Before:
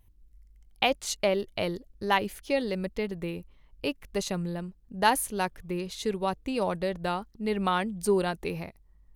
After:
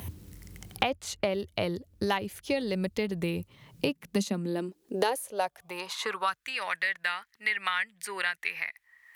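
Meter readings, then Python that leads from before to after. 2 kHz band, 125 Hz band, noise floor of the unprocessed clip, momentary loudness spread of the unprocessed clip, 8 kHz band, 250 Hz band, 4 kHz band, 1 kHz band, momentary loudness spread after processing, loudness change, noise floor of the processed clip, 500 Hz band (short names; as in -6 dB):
+3.5 dB, -1.5 dB, -60 dBFS, 9 LU, -4.0 dB, -2.0 dB, -0.5 dB, -3.5 dB, 8 LU, -1.5 dB, -70 dBFS, -3.5 dB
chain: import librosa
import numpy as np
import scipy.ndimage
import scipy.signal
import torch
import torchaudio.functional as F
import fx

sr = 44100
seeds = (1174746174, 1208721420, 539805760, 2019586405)

y = fx.filter_sweep_highpass(x, sr, from_hz=85.0, to_hz=1900.0, start_s=3.28, end_s=6.63, q=4.8)
y = fx.band_squash(y, sr, depth_pct=100)
y = y * librosa.db_to_amplitude(-2.0)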